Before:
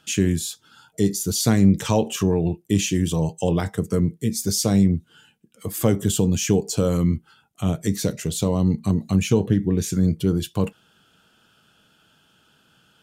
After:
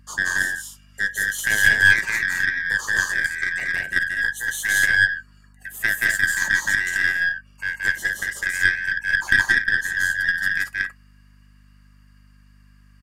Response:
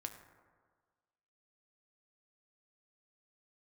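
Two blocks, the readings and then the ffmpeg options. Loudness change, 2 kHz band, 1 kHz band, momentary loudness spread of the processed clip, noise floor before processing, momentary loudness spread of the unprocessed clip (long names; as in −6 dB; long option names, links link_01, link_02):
+2.0 dB, +23.5 dB, −4.5 dB, 9 LU, −61 dBFS, 8 LU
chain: -filter_complex "[0:a]afftfilt=real='real(if(lt(b,272),68*(eq(floor(b/68),0)*1+eq(floor(b/68),1)*0+eq(floor(b/68),2)*3+eq(floor(b/68),3)*2)+mod(b,68),b),0)':imag='imag(if(lt(b,272),68*(eq(floor(b/68),0)*1+eq(floor(b/68),1)*0+eq(floor(b/68),2)*3+eq(floor(b/68),3)*2)+mod(b,68),b),0)':win_size=2048:overlap=0.75,highpass=frequency=69:width=0.5412,highpass=frequency=69:width=1.3066,equalizer=frequency=4000:width_type=o:width=1.1:gain=-8,asplit=2[link_01][link_02];[link_02]aecho=0:1:174.9|227.4:0.891|0.708[link_03];[link_01][link_03]amix=inputs=2:normalize=0,aeval=exprs='0.75*(cos(1*acos(clip(val(0)/0.75,-1,1)))-cos(1*PI/2))+0.15*(cos(2*acos(clip(val(0)/0.75,-1,1)))-cos(2*PI/2))+0.0422*(cos(7*acos(clip(val(0)/0.75,-1,1)))-cos(7*PI/2))':channel_layout=same,aeval=exprs='val(0)+0.00355*(sin(2*PI*50*n/s)+sin(2*PI*2*50*n/s)/2+sin(2*PI*3*50*n/s)/3+sin(2*PI*4*50*n/s)/4+sin(2*PI*5*50*n/s)/5)':channel_layout=same,volume=-1.5dB"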